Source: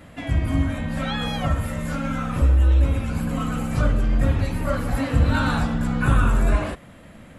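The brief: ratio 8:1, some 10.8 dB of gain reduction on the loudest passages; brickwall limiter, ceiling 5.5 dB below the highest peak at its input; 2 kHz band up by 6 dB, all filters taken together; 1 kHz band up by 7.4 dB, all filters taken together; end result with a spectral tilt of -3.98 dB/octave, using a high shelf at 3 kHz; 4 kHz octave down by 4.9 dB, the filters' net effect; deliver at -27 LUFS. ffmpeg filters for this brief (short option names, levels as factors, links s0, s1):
-af "equalizer=f=1000:t=o:g=8.5,equalizer=f=2000:t=o:g=7.5,highshelf=f=3000:g=-6,equalizer=f=4000:t=o:g=-6,acompressor=threshold=0.0631:ratio=8,volume=1.41,alimiter=limit=0.141:level=0:latency=1"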